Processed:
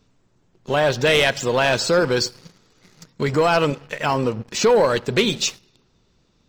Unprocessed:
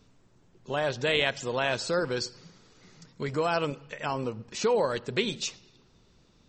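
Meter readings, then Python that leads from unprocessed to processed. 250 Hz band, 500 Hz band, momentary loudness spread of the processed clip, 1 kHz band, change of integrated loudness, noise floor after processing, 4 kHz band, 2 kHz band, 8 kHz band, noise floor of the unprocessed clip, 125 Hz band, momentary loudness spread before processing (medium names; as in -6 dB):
+10.0 dB, +10.0 dB, 8 LU, +9.5 dB, +10.0 dB, -63 dBFS, +9.0 dB, +9.0 dB, +11.0 dB, -62 dBFS, +10.5 dB, 9 LU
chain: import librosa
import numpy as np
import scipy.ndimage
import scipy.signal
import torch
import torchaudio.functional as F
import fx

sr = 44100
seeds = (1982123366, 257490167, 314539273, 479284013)

y = fx.leveller(x, sr, passes=2)
y = F.gain(torch.from_numpy(y), 3.5).numpy()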